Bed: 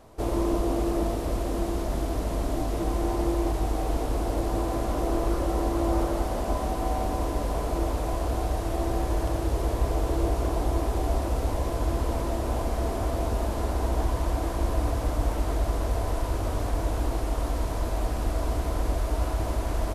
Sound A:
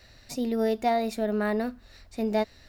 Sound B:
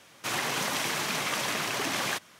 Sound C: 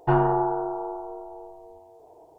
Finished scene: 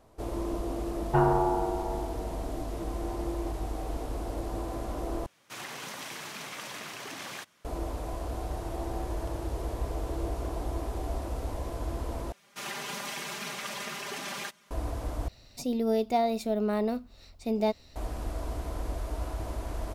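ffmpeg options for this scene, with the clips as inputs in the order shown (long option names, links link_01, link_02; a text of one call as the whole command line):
ffmpeg -i bed.wav -i cue0.wav -i cue1.wav -i cue2.wav -filter_complex "[3:a]asplit=2[link_01][link_02];[2:a]asplit=2[link_03][link_04];[0:a]volume=-7.5dB[link_05];[link_02]acompressor=threshold=-31dB:ratio=6:attack=3.2:release=140:knee=1:detection=peak[link_06];[link_04]aecho=1:1:5:0.95[link_07];[1:a]equalizer=frequency=1700:width=3.6:gain=-12.5[link_08];[link_05]asplit=4[link_09][link_10][link_11][link_12];[link_09]atrim=end=5.264[link_13];[link_03]atrim=end=2.39,asetpts=PTS-STARTPTS,volume=-10.5dB[link_14];[link_10]atrim=start=7.646:end=12.324[link_15];[link_07]atrim=end=2.39,asetpts=PTS-STARTPTS,volume=-10dB[link_16];[link_11]atrim=start=14.706:end=15.284[link_17];[link_08]atrim=end=2.68,asetpts=PTS-STARTPTS,volume=-1dB[link_18];[link_12]atrim=start=17.956[link_19];[link_01]atrim=end=2.38,asetpts=PTS-STARTPTS,volume=-3dB,afade=type=in:duration=0.004:curve=hsin,afade=type=out:start_time=2.376:duration=0.004:curve=hsin,adelay=1060[link_20];[link_06]atrim=end=2.38,asetpts=PTS-STARTPTS,volume=-13dB,afade=type=in:duration=0.004:curve=hsin,afade=type=out:start_time=2.376:duration=0.004:curve=hsin,adelay=8430[link_21];[link_13][link_14]acrossfade=duration=0.004:curve1=hsin:curve2=hsin[link_22];[link_22][link_15]acrossfade=duration=0.004:curve1=hsin:curve2=hsin[link_23];[link_23][link_16]acrossfade=duration=0.004:curve1=hsin:curve2=hsin[link_24];[link_24][link_17]acrossfade=duration=0.004:curve1=hsin:curve2=hsin[link_25];[link_25][link_18]acrossfade=duration=0.004:curve1=hsin:curve2=hsin[link_26];[link_26][link_19]acrossfade=duration=0.004:curve1=hsin:curve2=hsin[link_27];[link_27][link_20][link_21]amix=inputs=3:normalize=0" out.wav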